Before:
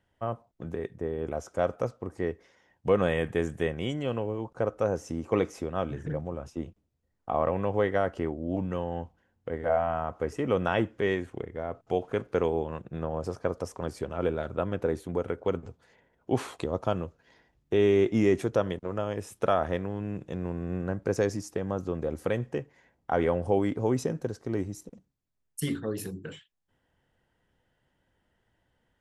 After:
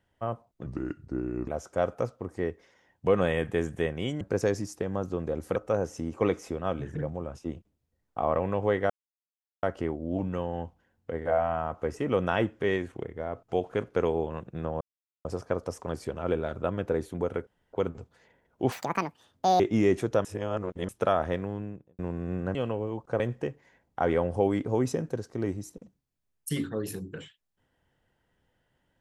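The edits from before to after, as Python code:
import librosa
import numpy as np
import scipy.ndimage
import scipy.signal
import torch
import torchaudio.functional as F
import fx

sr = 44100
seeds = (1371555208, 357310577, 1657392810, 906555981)

y = fx.studio_fade_out(x, sr, start_s=19.88, length_s=0.52)
y = fx.edit(y, sr, fx.speed_span(start_s=0.66, length_s=0.63, speed=0.77),
    fx.swap(start_s=4.02, length_s=0.65, other_s=20.96, other_length_s=1.35),
    fx.insert_silence(at_s=8.01, length_s=0.73),
    fx.insert_silence(at_s=13.19, length_s=0.44),
    fx.insert_room_tone(at_s=15.41, length_s=0.26),
    fx.speed_span(start_s=16.4, length_s=1.61, speed=1.83),
    fx.reverse_span(start_s=18.66, length_s=0.64), tone=tone)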